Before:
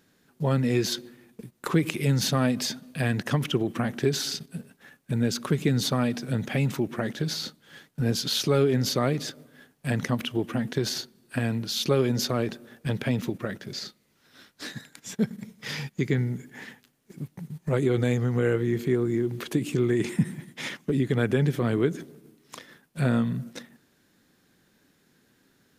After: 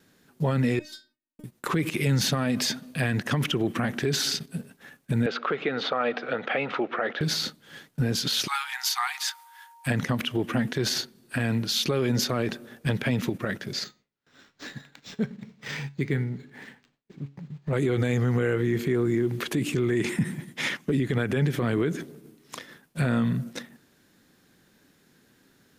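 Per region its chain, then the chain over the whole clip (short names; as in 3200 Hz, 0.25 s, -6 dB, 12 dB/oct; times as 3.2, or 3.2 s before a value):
0.79–1.44 low shelf 130 Hz +8.5 dB + transient shaper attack +12 dB, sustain -10 dB + metallic resonator 300 Hz, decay 0.35 s, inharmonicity 0.002
5.26–7.21 speaker cabinet 420–3500 Hz, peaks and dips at 490 Hz +8 dB, 730 Hz +7 dB, 1300 Hz +9 dB + mismatched tape noise reduction encoder only
8.46–9.86 high shelf 6700 Hz +6.5 dB + whine 930 Hz -53 dBFS + brick-wall FIR high-pass 730 Hz
13.84–17.73 resonator 140 Hz, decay 0.33 s, mix 50% + decimation joined by straight lines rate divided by 4×
whole clip: gate with hold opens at -56 dBFS; dynamic EQ 1900 Hz, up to +4 dB, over -44 dBFS, Q 0.84; limiter -19 dBFS; gain +3 dB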